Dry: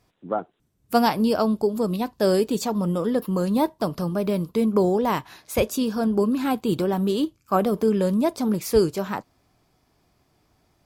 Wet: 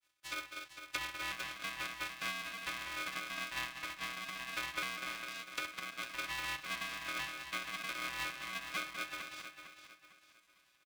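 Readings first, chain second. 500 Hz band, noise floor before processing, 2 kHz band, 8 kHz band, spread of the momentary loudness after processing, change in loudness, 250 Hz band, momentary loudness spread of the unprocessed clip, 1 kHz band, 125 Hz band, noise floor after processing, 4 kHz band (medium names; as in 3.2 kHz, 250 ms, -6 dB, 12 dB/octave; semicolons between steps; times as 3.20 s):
-32.0 dB, -67 dBFS, +0.5 dB, -9.0 dB, 6 LU, -16.5 dB, -33.5 dB, 7 LU, -16.0 dB, -29.5 dB, -70 dBFS, -4.5 dB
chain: vocoder on a broken chord bare fifth, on B3, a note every 438 ms; sample-and-hold 36×; steep high-pass 1.6 kHz 48 dB/octave; compression 6:1, threshold -36 dBFS, peak gain reduction 14.5 dB; on a send: loudspeakers at several distances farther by 21 m -10 dB, 68 m -9 dB, 84 m -10 dB; on the sum: low-pass that closes with the level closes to 2.1 kHz, closed at -40 dBFS; feedback delay 453 ms, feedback 37%, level -9.5 dB; polarity switched at an audio rate 470 Hz; trim +4 dB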